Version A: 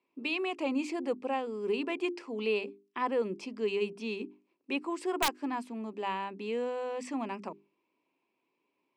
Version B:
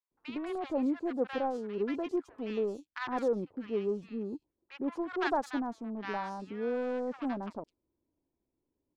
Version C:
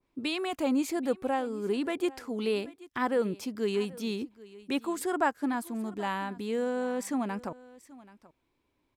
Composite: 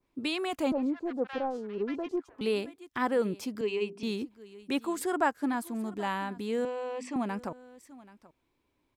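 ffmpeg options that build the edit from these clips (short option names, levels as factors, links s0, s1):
-filter_complex "[0:a]asplit=2[s0][s1];[2:a]asplit=4[s2][s3][s4][s5];[s2]atrim=end=0.722[s6];[1:a]atrim=start=0.718:end=2.412[s7];[s3]atrim=start=2.408:end=3.612[s8];[s0]atrim=start=3.608:end=4.032[s9];[s4]atrim=start=4.028:end=6.652[s10];[s1]atrim=start=6.648:end=7.162[s11];[s5]atrim=start=7.158[s12];[s6][s7]acrossfade=d=0.004:c1=hsin:c2=hsin[s13];[s13][s8]acrossfade=d=0.004:c1=hsin:c2=hsin[s14];[s14][s9]acrossfade=d=0.004:c1=hsin:c2=hsin[s15];[s15][s10]acrossfade=d=0.004:c1=hsin:c2=hsin[s16];[s16][s11]acrossfade=d=0.004:c1=hsin:c2=hsin[s17];[s17][s12]acrossfade=d=0.004:c1=hsin:c2=hsin"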